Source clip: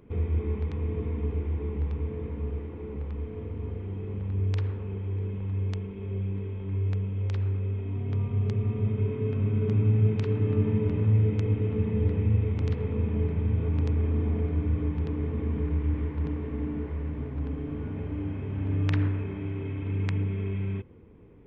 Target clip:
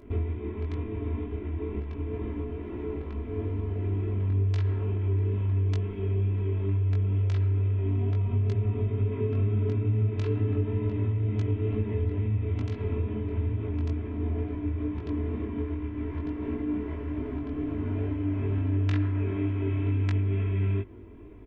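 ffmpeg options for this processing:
-af "aecho=1:1:3:0.77,acompressor=threshold=0.0355:ratio=6,flanger=delay=19:depth=2.4:speed=2.2,volume=2.24"

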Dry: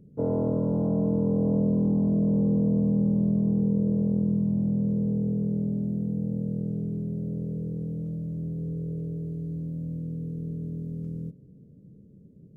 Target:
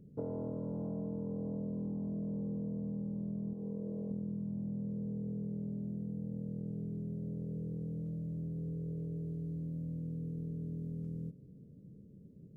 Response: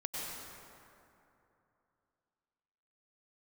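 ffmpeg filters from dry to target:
-filter_complex "[0:a]asettb=1/sr,asplit=3[s0][s1][s2];[s0]atrim=end=3.534[s3];[s1]atrim=start=3.53:end=4.11,asetpts=PTS-STARTPTS,afade=t=in:d=0.004:c=qsin,afade=t=out:st=0.576:d=0.004:c=qsin,bass=f=250:g=-10,treble=f=4000:g=-4[s4];[s2]atrim=start=4.106[s5];[s3][s4]acrossfade=d=0.004:c1=hsin:c2=qsin[s6];[s6][s5]acrossfade=d=0.004:c1=qsin:c2=hsin,acompressor=threshold=0.0224:ratio=6,volume=0.668"

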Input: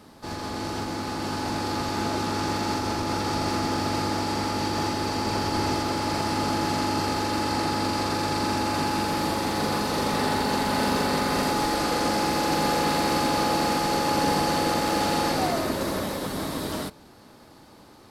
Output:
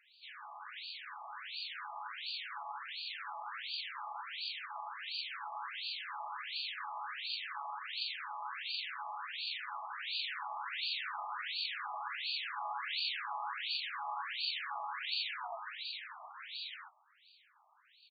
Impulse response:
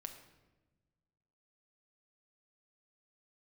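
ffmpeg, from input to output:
-filter_complex "[0:a]aderivative,asplit=4[s0][s1][s2][s3];[s1]asetrate=29433,aresample=44100,atempo=1.49831,volume=0.251[s4];[s2]asetrate=52444,aresample=44100,atempo=0.840896,volume=0.501[s5];[s3]asetrate=58866,aresample=44100,atempo=0.749154,volume=0.562[s6];[s0][s4][s5][s6]amix=inputs=4:normalize=0,asplit=2[s7][s8];[1:a]atrim=start_sample=2205,afade=t=out:st=0.27:d=0.01,atrim=end_sample=12348[s9];[s8][s9]afir=irnorm=-1:irlink=0,volume=0.316[s10];[s7][s10]amix=inputs=2:normalize=0,afftfilt=real='re*between(b*sr/1024,880*pow(3400/880,0.5+0.5*sin(2*PI*1.4*pts/sr))/1.41,880*pow(3400/880,0.5+0.5*sin(2*PI*1.4*pts/sr))*1.41)':imag='im*between(b*sr/1024,880*pow(3400/880,0.5+0.5*sin(2*PI*1.4*pts/sr))/1.41,880*pow(3400/880,0.5+0.5*sin(2*PI*1.4*pts/sr))*1.41)':win_size=1024:overlap=0.75,volume=1.33"

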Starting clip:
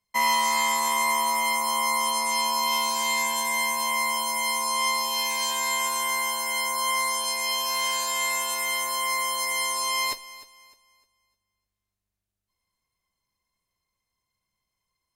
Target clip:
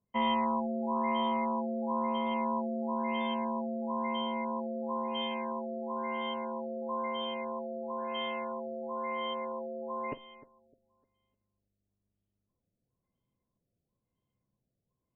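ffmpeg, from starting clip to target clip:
-af "equalizer=f=125:t=o:w=1:g=10,equalizer=f=250:t=o:w=1:g=10,equalizer=f=500:t=o:w=1:g=7,equalizer=f=1000:t=o:w=1:g=-4,equalizer=f=2000:t=o:w=1:g=-11,equalizer=f=4000:t=o:w=1:g=4,afftfilt=real='re*lt(b*sr/1024,740*pow(3600/740,0.5+0.5*sin(2*PI*1*pts/sr)))':imag='im*lt(b*sr/1024,740*pow(3600/740,0.5+0.5*sin(2*PI*1*pts/sr)))':win_size=1024:overlap=0.75,volume=0.708"

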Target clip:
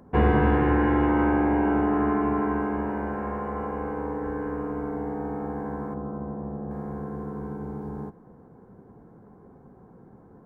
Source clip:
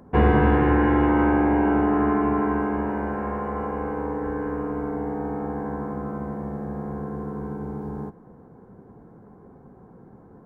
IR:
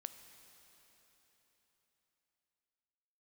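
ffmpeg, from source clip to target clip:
-filter_complex "[0:a]asettb=1/sr,asplit=3[s0][s1][s2];[s0]atrim=end=5.944[s3];[s1]atrim=start=5.94:end=6.71,asetpts=PTS-STARTPTS,afade=t=in:d=0.004:c=qsin,afade=t=out:st=0.766:d=0.004:c=qsin,lowpass=1100[s4];[s2]atrim=start=6.706[s5];[s3][s4]acrossfade=d=0.004:c1=hsin:c2=qsin[s6];[s6][s5]acrossfade=d=0.004:c1=qsin:c2=hsin,volume=0.75"

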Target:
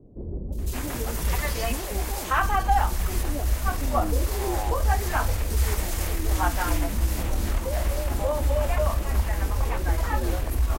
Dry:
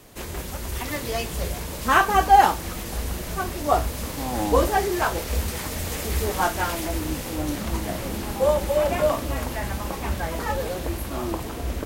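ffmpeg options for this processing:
-filter_complex "[0:a]asubboost=boost=7:cutoff=54,acompressor=threshold=0.0708:ratio=3,acrossover=split=480|3500[s0][s1][s2];[s2]adelay=560[s3];[s1]adelay=640[s4];[s0][s4][s3]amix=inputs=3:normalize=0,atempo=1.1,volume=1.33"

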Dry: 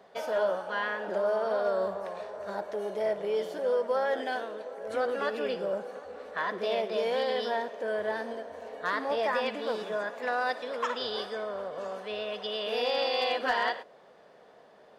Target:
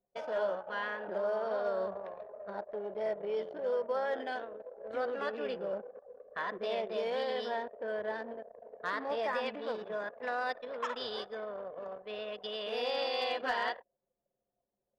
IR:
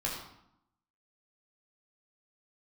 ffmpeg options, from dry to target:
-af "anlmdn=1.58,volume=0.562"

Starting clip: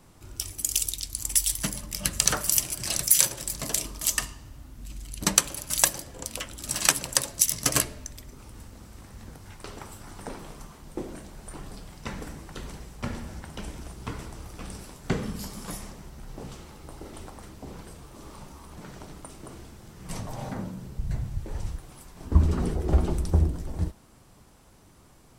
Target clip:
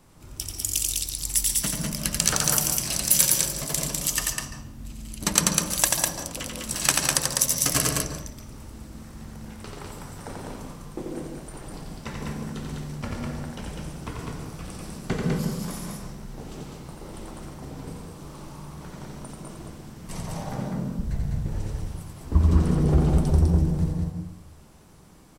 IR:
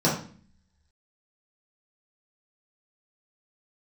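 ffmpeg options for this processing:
-filter_complex "[0:a]aecho=1:1:87.46|201.2:0.631|0.708,asplit=2[s0][s1];[1:a]atrim=start_sample=2205,adelay=139[s2];[s1][s2]afir=irnorm=-1:irlink=0,volume=0.0708[s3];[s0][s3]amix=inputs=2:normalize=0,volume=0.891"

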